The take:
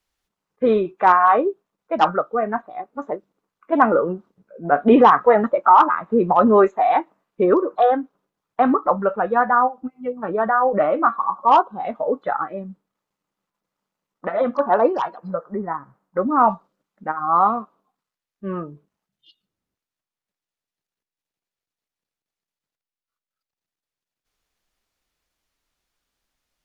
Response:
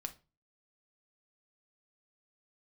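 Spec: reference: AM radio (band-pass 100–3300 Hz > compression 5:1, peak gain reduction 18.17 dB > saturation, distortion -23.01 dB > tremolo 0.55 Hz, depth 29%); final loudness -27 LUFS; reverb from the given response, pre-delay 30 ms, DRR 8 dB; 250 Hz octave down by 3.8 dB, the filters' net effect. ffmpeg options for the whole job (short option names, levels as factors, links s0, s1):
-filter_complex "[0:a]equalizer=f=250:t=o:g=-4.5,asplit=2[s0][s1];[1:a]atrim=start_sample=2205,adelay=30[s2];[s1][s2]afir=irnorm=-1:irlink=0,volume=0.501[s3];[s0][s3]amix=inputs=2:normalize=0,highpass=100,lowpass=3300,acompressor=threshold=0.0398:ratio=5,asoftclip=threshold=0.112,tremolo=f=0.55:d=0.29,volume=2.24"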